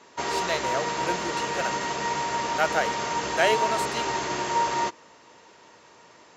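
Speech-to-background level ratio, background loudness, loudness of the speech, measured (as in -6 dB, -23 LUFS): -2.0 dB, -27.5 LUFS, -29.5 LUFS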